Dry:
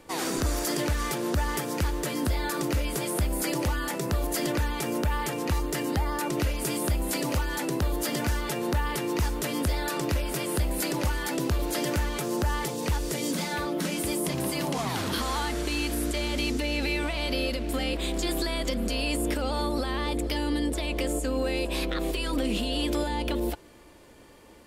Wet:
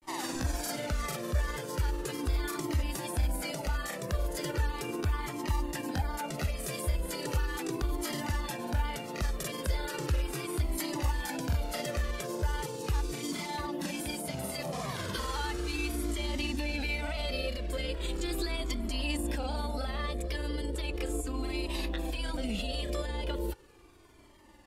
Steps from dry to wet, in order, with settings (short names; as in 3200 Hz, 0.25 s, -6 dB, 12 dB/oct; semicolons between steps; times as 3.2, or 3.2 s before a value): grains 0.1 s, spray 28 ms, pitch spread up and down by 0 st; cascading flanger falling 0.37 Hz